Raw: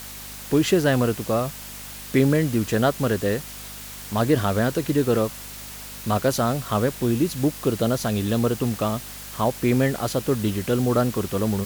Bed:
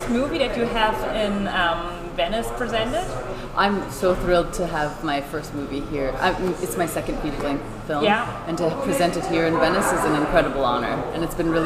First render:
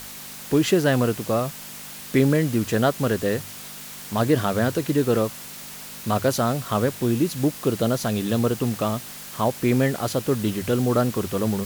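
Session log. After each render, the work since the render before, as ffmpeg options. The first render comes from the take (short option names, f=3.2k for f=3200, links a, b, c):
-af "bandreject=f=50:t=h:w=4,bandreject=f=100:t=h:w=4"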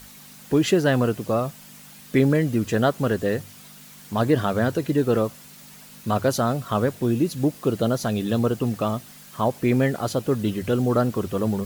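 -af "afftdn=nr=9:nf=-38"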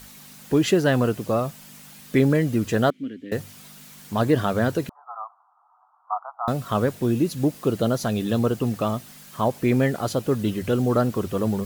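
-filter_complex "[0:a]asettb=1/sr,asplit=3[a][b][c];[a]atrim=end=2.904[d];[b]atrim=start=2.9:end=3.32,asetpts=PTS-STARTPTS,afade=t=in:d=0.004:c=qsin,afade=t=out:st=0.416:d=0.004:c=qsin,asplit=3[e][f][g];[e]bandpass=f=270:t=q:w=8,volume=0dB[h];[f]bandpass=f=2.29k:t=q:w=8,volume=-6dB[i];[g]bandpass=f=3.01k:t=q:w=8,volume=-9dB[j];[h][i][j]amix=inputs=3:normalize=0[k];[c]atrim=start=3.316[l];[d][k]acrossfade=d=0.004:c1=hsin:c2=qsin[m];[m][l]acrossfade=d=0.004:c1=qsin:c2=hsin,asettb=1/sr,asplit=3[n][o][p];[n]atrim=end=4.894[q];[o]atrim=start=4.89:end=6.48,asetpts=PTS-STARTPTS,afade=t=in:d=0.004:c=qsin,afade=t=out:st=1.586:d=0.004:c=qsin,asuperpass=centerf=970:order=12:qfactor=1.6[r];[p]atrim=start=6.476[s];[q][r]acrossfade=d=0.004:c1=hsin:c2=qsin[t];[t][s]acrossfade=d=0.004:c1=qsin:c2=hsin"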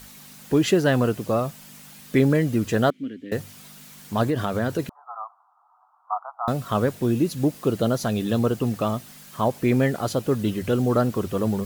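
-filter_complex "[0:a]asettb=1/sr,asplit=3[a][b][c];[a]atrim=end=4.254[d];[b]atrim=start=4.25:end=4.79,asetpts=PTS-STARTPTS,afade=t=in:d=0.004:c=qsin,afade=t=out:st=0.536:d=0.004:c=qsin,acompressor=threshold=-20dB:ratio=3:attack=3.2:release=140:knee=1:detection=peak[e];[c]atrim=start=4.786[f];[d][e]acrossfade=d=0.004:c1=hsin:c2=qsin[g];[g][f]acrossfade=d=0.004:c1=qsin:c2=hsin"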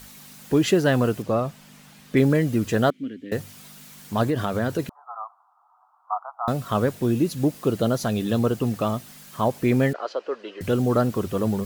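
-filter_complex "[0:a]asettb=1/sr,asplit=3[a][b][c];[a]atrim=end=1.224[d];[b]atrim=start=1.22:end=2.17,asetpts=PTS-STARTPTS,afade=t=in:d=0.004:c=qsin,afade=t=out:st=0.946:d=0.004:c=qsin,lowpass=f=3.8k:p=1[e];[c]atrim=start=2.166[f];[d][e]acrossfade=d=0.004:c1=hsin:c2=qsin[g];[g][f]acrossfade=d=0.004:c1=qsin:c2=hsin,asettb=1/sr,asplit=3[h][i][j];[h]atrim=end=9.934[k];[i]atrim=start=9.93:end=10.61,asetpts=PTS-STARTPTS,afade=t=in:d=0.004:c=qsin,afade=t=out:st=0.676:d=0.004:c=qsin,highpass=f=450:w=0.5412,highpass=f=450:w=1.3066,equalizer=f=770:t=q:w=4:g=-5,equalizer=f=2.2k:t=q:w=4:g=-4,equalizer=f=3.6k:t=q:w=4:g=-10,lowpass=f=4.1k:w=0.5412,lowpass=f=4.1k:w=1.3066[l];[j]atrim=start=10.606[m];[k][l]acrossfade=d=0.004:c1=hsin:c2=qsin[n];[n][m]acrossfade=d=0.004:c1=qsin:c2=hsin"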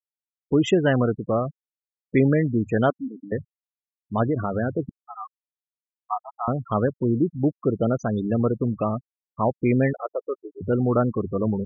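-af "bandreject=f=4.4k:w=5.5,afftfilt=real='re*gte(hypot(re,im),0.0708)':imag='im*gte(hypot(re,im),0.0708)':win_size=1024:overlap=0.75"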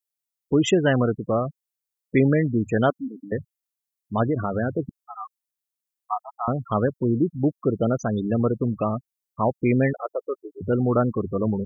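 -af "highshelf=f=5.3k:g=11"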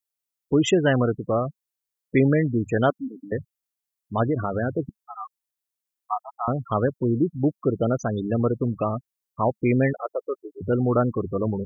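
-af "equalizer=f=210:t=o:w=0.21:g=-4.5"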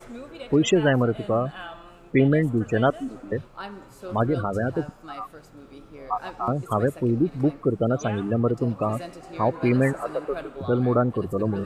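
-filter_complex "[1:a]volume=-17.5dB[a];[0:a][a]amix=inputs=2:normalize=0"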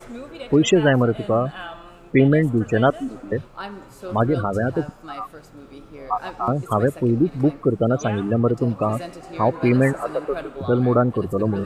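-af "volume=3.5dB"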